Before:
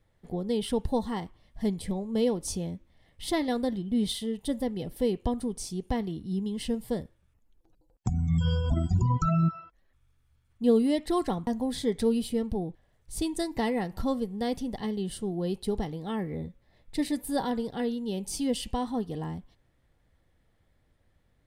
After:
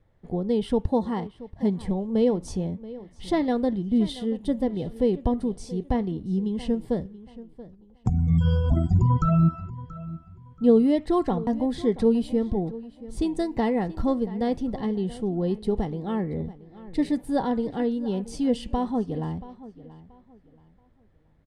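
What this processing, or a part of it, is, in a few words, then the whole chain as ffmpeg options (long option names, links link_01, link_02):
through cloth: -filter_complex "[0:a]lowpass=8600,highshelf=frequency=2200:gain=-12,asettb=1/sr,asplit=3[link_01][link_02][link_03];[link_01]atrim=end=0.864[link_04];[link_02]atrim=start=0.86:end=1.79,asetpts=PTS-STARTPTS,afade=type=in:duration=0.004:curve=qsin,afade=type=out:start_time=0.926:duration=0.004:curve=qsin,highpass=86[link_05];[link_03]atrim=start=1.786[link_06];[link_04][link_05]acrossfade=duration=0.004:curve1=hsin:curve2=qsin[link_07];[link_07][link_06]acrossfade=duration=0.004:curve1=qsin:curve2=hsin,asplit=2[link_08][link_09];[link_09]adelay=680,lowpass=frequency=4500:poles=1,volume=-17dB,asplit=2[link_10][link_11];[link_11]adelay=680,lowpass=frequency=4500:poles=1,volume=0.29,asplit=2[link_12][link_13];[link_13]adelay=680,lowpass=frequency=4500:poles=1,volume=0.29[link_14];[link_08][link_10][link_12][link_14]amix=inputs=4:normalize=0,volume=5dB"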